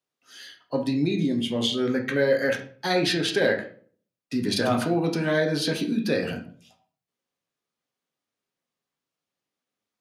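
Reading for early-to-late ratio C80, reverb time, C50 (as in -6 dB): 14.5 dB, 0.45 s, 10.0 dB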